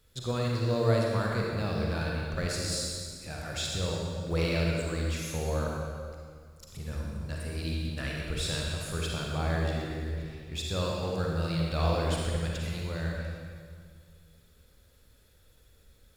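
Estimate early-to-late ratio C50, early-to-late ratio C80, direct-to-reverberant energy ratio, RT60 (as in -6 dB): -1.0 dB, 0.5 dB, -2.5 dB, 2.0 s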